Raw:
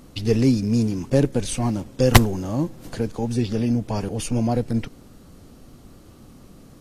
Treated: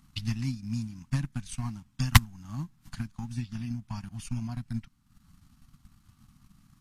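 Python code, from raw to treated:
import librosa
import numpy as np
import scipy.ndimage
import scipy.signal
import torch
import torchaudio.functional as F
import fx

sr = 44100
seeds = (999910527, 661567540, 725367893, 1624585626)

y = fx.transient(x, sr, attack_db=8, sustain_db=-9)
y = scipy.signal.sosfilt(scipy.signal.cheby1(2, 1.0, [190.0, 1100.0], 'bandstop', fs=sr, output='sos'), y)
y = y * 10.0 ** (-11.0 / 20.0)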